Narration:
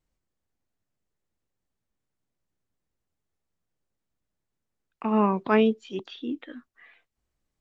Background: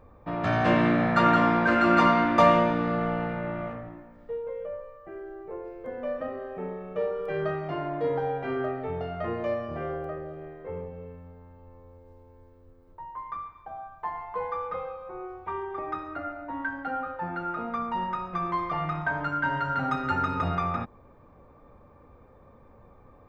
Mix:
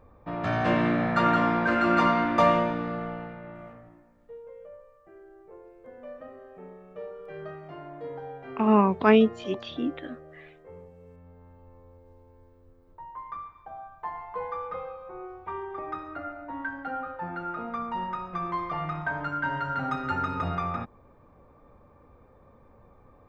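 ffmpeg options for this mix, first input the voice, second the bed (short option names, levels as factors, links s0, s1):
-filter_complex "[0:a]adelay=3550,volume=1.33[s0];[1:a]volume=2.11,afade=t=out:st=2.5:d=0.89:silence=0.375837,afade=t=in:st=10.99:d=0.49:silence=0.375837[s1];[s0][s1]amix=inputs=2:normalize=0"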